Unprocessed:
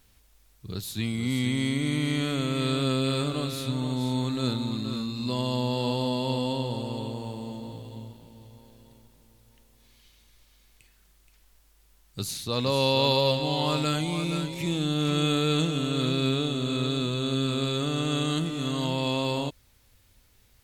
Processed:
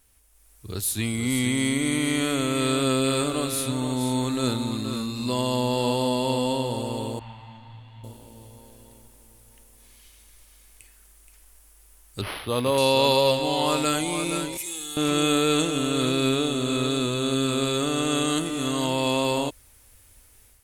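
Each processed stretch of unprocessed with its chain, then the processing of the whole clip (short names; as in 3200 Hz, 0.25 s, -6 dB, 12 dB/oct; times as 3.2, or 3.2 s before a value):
7.19–8.04 EQ curve 140 Hz 0 dB, 430 Hz -25 dB, 770 Hz -4 dB, 2000 Hz +7 dB, 4400 Hz -7 dB, 9000 Hz -28 dB + detuned doubles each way 32 cents
12.21–12.78 median filter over 3 samples + HPF 48 Hz + decimation joined by straight lines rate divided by 6×
14.57–14.97 pre-emphasis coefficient 0.9 + hard clip -34.5 dBFS + comb 2.4 ms, depth 72%
whole clip: fifteen-band EQ 160 Hz -12 dB, 4000 Hz -5 dB, 10000 Hz +11 dB; AGC gain up to 8 dB; gain -2.5 dB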